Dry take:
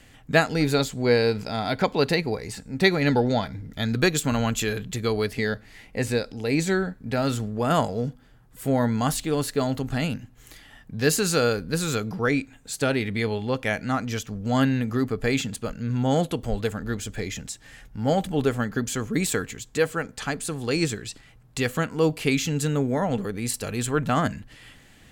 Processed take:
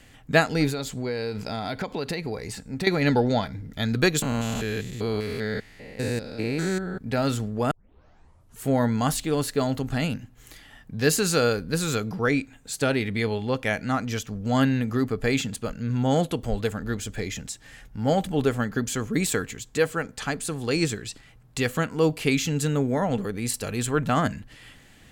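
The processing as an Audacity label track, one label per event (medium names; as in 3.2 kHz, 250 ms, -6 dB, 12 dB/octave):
0.690000	2.870000	compression, threshold -25 dBFS
4.220000	7.010000	spectrogram pixelated in time every 200 ms
7.710000	7.710000	tape start 0.96 s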